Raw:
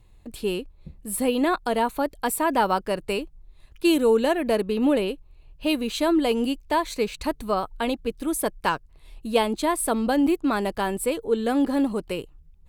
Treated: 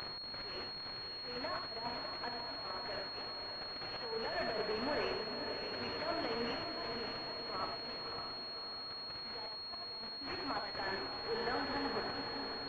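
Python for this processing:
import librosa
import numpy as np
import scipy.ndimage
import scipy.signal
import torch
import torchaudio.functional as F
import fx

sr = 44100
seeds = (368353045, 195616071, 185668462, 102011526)

y = x + 0.5 * 10.0 ** (-27.5 / 20.0) * np.sign(x)
y = scipy.signal.sosfilt(scipy.signal.butter(2, 280.0, 'highpass', fs=sr, output='sos'), y)
y = np.diff(y, prepend=0.0)
y = y + 0.58 * np.pad(y, (int(4.6 * sr / 1000.0), 0))[:len(y)]
y = fx.dynamic_eq(y, sr, hz=850.0, q=1.3, threshold_db=-50.0, ratio=4.0, max_db=6)
y = fx.over_compress(y, sr, threshold_db=-36.0, ratio=-0.5)
y = fx.auto_swell(y, sr, attack_ms=361.0)
y = fx.level_steps(y, sr, step_db=16, at=(7.9, 10.25))
y = 10.0 ** (-32.0 / 20.0) * np.tanh(y / 10.0 ** (-32.0 / 20.0))
y = fx.echo_diffused(y, sr, ms=563, feedback_pct=61, wet_db=-6.0)
y = fx.rev_gated(y, sr, seeds[0], gate_ms=110, shape='rising', drr_db=3.5)
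y = fx.pwm(y, sr, carrier_hz=4300.0)
y = y * librosa.db_to_amplitude(2.5)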